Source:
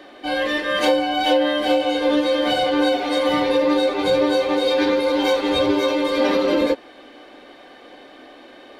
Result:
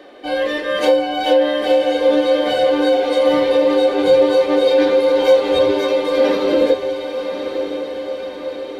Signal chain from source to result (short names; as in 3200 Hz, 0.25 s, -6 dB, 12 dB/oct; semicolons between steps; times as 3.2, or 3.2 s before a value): bell 480 Hz +8 dB 0.66 oct; diffused feedback echo 1.095 s, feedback 60%, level -9 dB; gain -1.5 dB